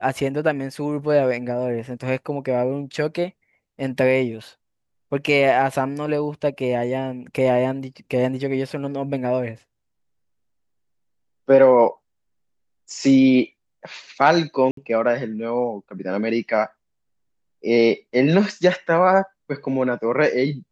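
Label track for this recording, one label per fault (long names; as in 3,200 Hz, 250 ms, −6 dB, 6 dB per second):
14.710000	14.770000	drop-out 63 ms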